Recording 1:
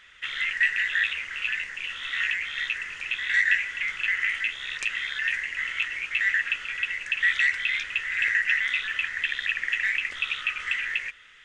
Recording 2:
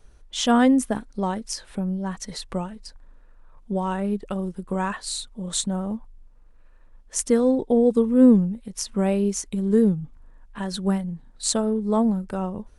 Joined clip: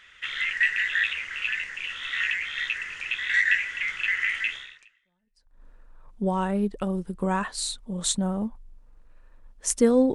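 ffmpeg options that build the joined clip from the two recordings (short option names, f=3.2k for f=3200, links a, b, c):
-filter_complex "[0:a]apad=whole_dur=10.14,atrim=end=10.14,atrim=end=5.64,asetpts=PTS-STARTPTS[a];[1:a]atrim=start=2.05:end=7.63,asetpts=PTS-STARTPTS[b];[a][b]acrossfade=d=1.08:c1=exp:c2=exp"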